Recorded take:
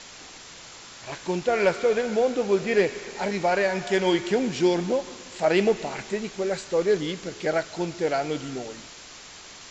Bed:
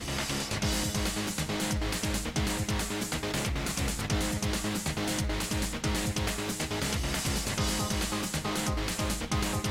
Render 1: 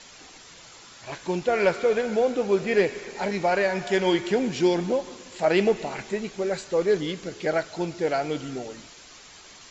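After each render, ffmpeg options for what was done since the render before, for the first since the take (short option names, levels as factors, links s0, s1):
-af "afftdn=nr=6:nf=-45"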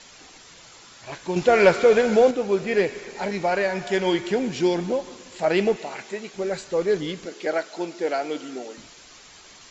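-filter_complex "[0:a]asettb=1/sr,asplit=3[s0][s1][s2];[s0]atrim=end=1.364[s3];[s1]atrim=start=1.36:end=2.31,asetpts=PTS-STARTPTS,afade=t=in:d=0.004:c=qsin,afade=t=out:st=0.946:d=0.004:c=qsin,acontrast=68[s4];[s2]atrim=start=2.306[s5];[s3][s4]acrossfade=d=0.004:c1=hsin:c2=qsin[s6];[s6][s5]acrossfade=d=0.004:c1=qsin:c2=hsin,asettb=1/sr,asplit=3[s7][s8][s9];[s7]atrim=end=5.764[s10];[s8]atrim=start=5.76:end=6.34,asetpts=PTS-STARTPTS,afade=t=in:d=0.004:c=qsin,afade=t=out:st=0.576:d=0.004:c=qsin,highpass=f=410:p=1[s11];[s9]atrim=start=6.336[s12];[s10][s11]acrossfade=d=0.004:c1=hsin:c2=qsin[s13];[s13][s12]acrossfade=d=0.004:c1=qsin:c2=hsin,asettb=1/sr,asplit=3[s14][s15][s16];[s14]atrim=end=7.254[s17];[s15]atrim=start=7.25:end=8.78,asetpts=PTS-STARTPTS,afade=t=in:d=0.004:c=qsin,afade=t=out:st=1.526:d=0.004:c=qsin,highpass=f=230:w=0.5412,highpass=f=230:w=1.3066[s18];[s16]atrim=start=8.776[s19];[s17][s18]acrossfade=d=0.004:c1=hsin:c2=qsin[s20];[s20][s19]acrossfade=d=0.004:c1=qsin:c2=hsin"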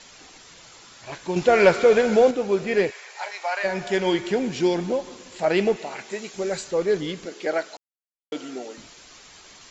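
-filter_complex "[0:a]asplit=3[s0][s1][s2];[s0]afade=t=out:st=2.9:d=0.02[s3];[s1]highpass=f=730:w=0.5412,highpass=f=730:w=1.3066,afade=t=in:st=2.9:d=0.02,afade=t=out:st=3.63:d=0.02[s4];[s2]afade=t=in:st=3.63:d=0.02[s5];[s3][s4][s5]amix=inputs=3:normalize=0,asettb=1/sr,asplit=3[s6][s7][s8];[s6]atrim=end=6.114[s9];[s7]atrim=start=6.11:end=6.71,asetpts=PTS-STARTPTS,afade=t=in:d=0.004:c=qsin,afade=t=out:st=0.596:d=0.004:c=qsin,highshelf=f=6700:g=11.5[s10];[s8]atrim=start=6.706[s11];[s9][s10]acrossfade=d=0.004:c1=hsin:c2=qsin[s12];[s12][s11]acrossfade=d=0.004:c1=qsin:c2=hsin,asplit=3[s13][s14][s15];[s13]atrim=end=7.77,asetpts=PTS-STARTPTS,afade=t=out:st=7.766:d=0.004:c=hsin[s16];[s14]atrim=start=7.77:end=8.32,asetpts=PTS-STARTPTS,volume=0[s17];[s15]atrim=start=8.32,asetpts=PTS-STARTPTS,afade=t=in:d=0.004:c=hsin[s18];[s16][s17][s18]concat=n=3:v=0:a=1"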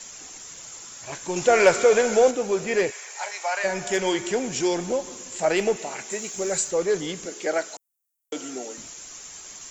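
-filter_complex "[0:a]acrossover=split=340|1200[s0][s1][s2];[s0]asoftclip=type=tanh:threshold=0.0237[s3];[s2]aexciter=amount=6.9:drive=2.6:freq=6100[s4];[s3][s1][s4]amix=inputs=3:normalize=0"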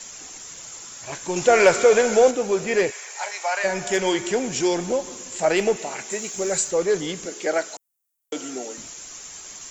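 -af "volume=1.26,alimiter=limit=0.708:level=0:latency=1"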